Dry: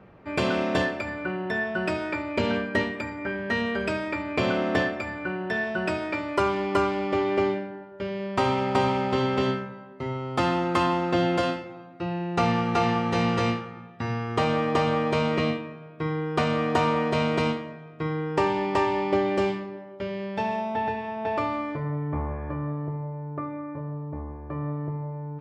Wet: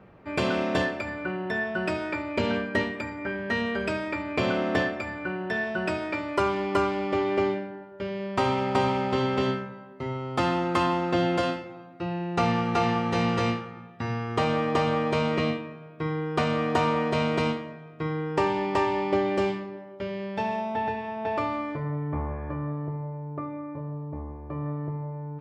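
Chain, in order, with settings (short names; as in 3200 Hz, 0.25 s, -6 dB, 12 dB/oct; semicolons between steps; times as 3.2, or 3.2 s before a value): 23.17–24.66 bell 1600 Hz -6 dB 0.48 oct; gain -1 dB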